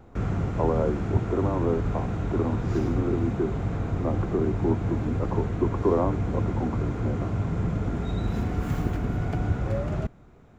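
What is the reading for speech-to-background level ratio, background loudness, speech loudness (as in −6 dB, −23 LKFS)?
−1.0 dB, −29.0 LKFS, −30.0 LKFS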